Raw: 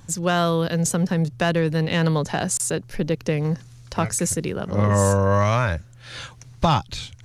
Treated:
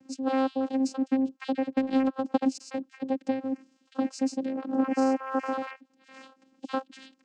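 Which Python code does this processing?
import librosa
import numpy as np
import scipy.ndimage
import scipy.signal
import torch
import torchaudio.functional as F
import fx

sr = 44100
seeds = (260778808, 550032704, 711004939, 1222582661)

y = fx.spec_dropout(x, sr, seeds[0], share_pct=33)
y = fx.vocoder(y, sr, bands=8, carrier='saw', carrier_hz=265.0)
y = fx.transient(y, sr, attack_db=6, sustain_db=-11, at=(1.69, 2.48), fade=0.02)
y = y * 10.0 ** (-4.5 / 20.0)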